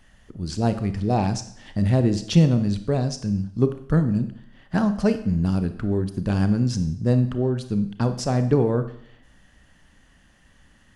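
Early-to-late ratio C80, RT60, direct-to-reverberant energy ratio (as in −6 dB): 15.0 dB, 0.65 s, 9.5 dB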